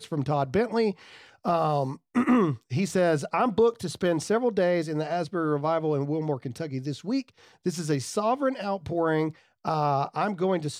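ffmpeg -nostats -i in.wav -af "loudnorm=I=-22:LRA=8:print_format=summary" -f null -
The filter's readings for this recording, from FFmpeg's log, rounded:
Input Integrated:    -27.0 LUFS
Input True Peak:     -12.9 dBTP
Input LRA:             4.0 LU
Input Threshold:     -37.1 LUFS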